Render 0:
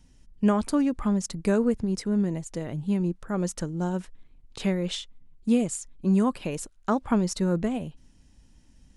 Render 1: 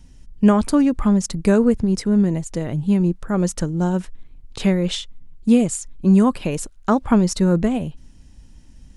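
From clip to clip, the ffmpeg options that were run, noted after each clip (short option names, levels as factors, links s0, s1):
-af "lowshelf=f=140:g=5.5,volume=2.11"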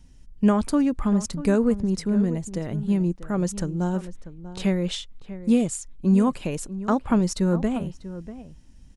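-filter_complex "[0:a]asplit=2[s0][s1];[s1]adelay=641.4,volume=0.2,highshelf=f=4000:g=-14.4[s2];[s0][s2]amix=inputs=2:normalize=0,volume=0.562"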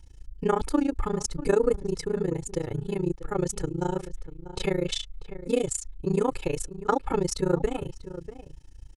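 -af "tremolo=f=28:d=0.974,aecho=1:1:2.3:0.89,volume=1.19"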